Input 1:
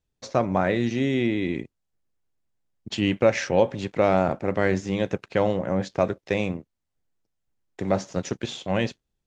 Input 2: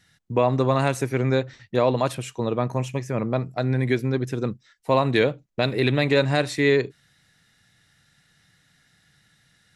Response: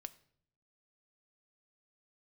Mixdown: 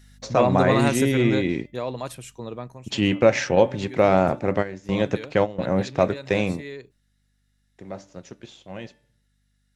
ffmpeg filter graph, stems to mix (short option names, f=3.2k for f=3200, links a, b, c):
-filter_complex "[0:a]bandreject=f=293:t=h:w=4,bandreject=f=586:t=h:w=4,bandreject=f=879:t=h:w=4,bandreject=f=1.172k:t=h:w=4,bandreject=f=1.465k:t=h:w=4,bandreject=f=1.758k:t=h:w=4,bandreject=f=2.051k:t=h:w=4,bandreject=f=2.344k:t=h:w=4,bandreject=f=2.637k:t=h:w=4,bandreject=f=2.93k:t=h:w=4,bandreject=f=3.223k:t=h:w=4,bandreject=f=3.516k:t=h:w=4,volume=2dB,asplit=2[a][b];[b]volume=-16.5dB[c];[1:a]highshelf=f=6k:g=10,aeval=exprs='val(0)+0.00355*(sin(2*PI*50*n/s)+sin(2*PI*2*50*n/s)/2+sin(2*PI*3*50*n/s)/3+sin(2*PI*4*50*n/s)/4+sin(2*PI*5*50*n/s)/5)':c=same,volume=-1dB,afade=t=out:st=1.08:d=0.55:silence=0.375837,afade=t=out:st=2.55:d=0.24:silence=0.354813,asplit=2[d][e];[e]apad=whole_len=408537[f];[a][f]sidechaingate=range=-19dB:threshold=-56dB:ratio=16:detection=peak[g];[2:a]atrim=start_sample=2205[h];[c][h]afir=irnorm=-1:irlink=0[i];[g][d][i]amix=inputs=3:normalize=0"